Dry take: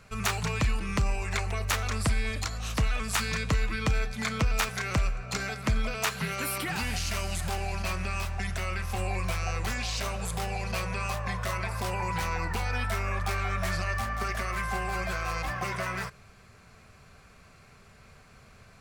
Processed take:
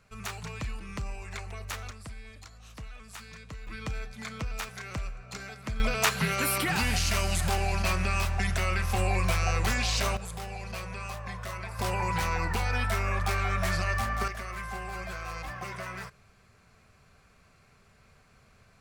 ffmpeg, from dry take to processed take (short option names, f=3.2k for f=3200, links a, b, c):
-af "asetnsamples=n=441:p=0,asendcmd='1.91 volume volume -16.5dB;3.67 volume volume -8.5dB;5.8 volume volume 4dB;10.17 volume volume -6dB;11.79 volume volume 1.5dB;14.28 volume volume -6dB',volume=-9dB"